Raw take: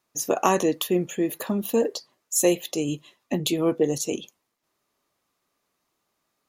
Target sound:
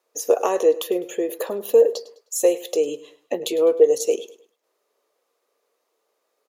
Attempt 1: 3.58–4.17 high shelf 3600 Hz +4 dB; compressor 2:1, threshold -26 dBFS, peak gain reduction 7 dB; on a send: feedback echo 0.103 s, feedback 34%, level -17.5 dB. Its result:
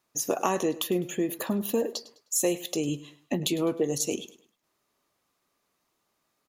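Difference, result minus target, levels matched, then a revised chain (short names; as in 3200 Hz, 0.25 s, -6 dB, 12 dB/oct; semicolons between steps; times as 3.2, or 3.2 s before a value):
500 Hz band -4.0 dB
3.58–4.17 high shelf 3600 Hz +4 dB; compressor 2:1, threshold -26 dBFS, peak gain reduction 7 dB; resonant high-pass 470 Hz, resonance Q 5.6; on a send: feedback echo 0.103 s, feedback 34%, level -17.5 dB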